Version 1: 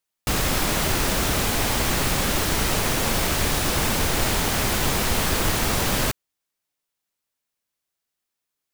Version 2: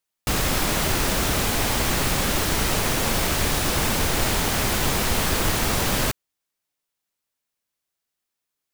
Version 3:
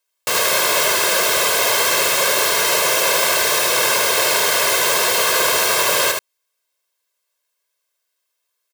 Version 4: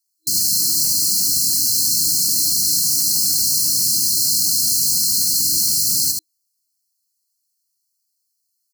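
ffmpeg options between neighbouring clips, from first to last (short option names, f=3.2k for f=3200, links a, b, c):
-af anull
-filter_complex "[0:a]highpass=440,aecho=1:1:1.9:0.8,asplit=2[a][b];[b]aecho=0:1:74:0.631[c];[a][c]amix=inputs=2:normalize=0,volume=4.5dB"
-af "afftfilt=real='re*(1-between(b*sr/4096,320,4100))':imag='im*(1-between(b*sr/4096,320,4100))':win_size=4096:overlap=0.75,volume=3dB"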